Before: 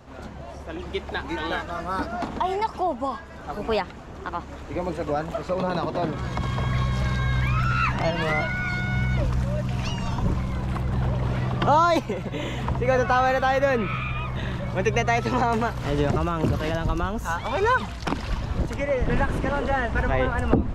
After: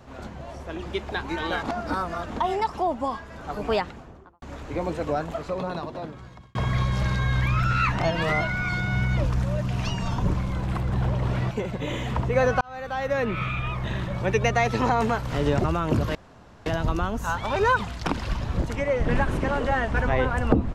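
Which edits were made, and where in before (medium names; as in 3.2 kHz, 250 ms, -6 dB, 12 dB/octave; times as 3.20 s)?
1.63–2.30 s: reverse
3.83–4.42 s: studio fade out
5.07–6.55 s: fade out
11.51–12.03 s: delete
13.13–13.97 s: fade in linear
16.67 s: insert room tone 0.51 s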